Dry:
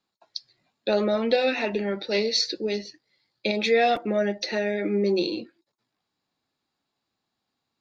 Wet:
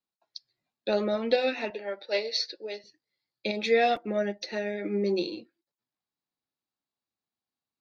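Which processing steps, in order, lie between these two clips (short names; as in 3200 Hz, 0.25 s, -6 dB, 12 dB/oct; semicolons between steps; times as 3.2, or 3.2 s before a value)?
1.7–2.84 speaker cabinet 470–5500 Hz, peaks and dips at 580 Hz +7 dB, 840 Hz +3 dB, 1600 Hz +3 dB; upward expander 1.5:1, over -43 dBFS; gain -1.5 dB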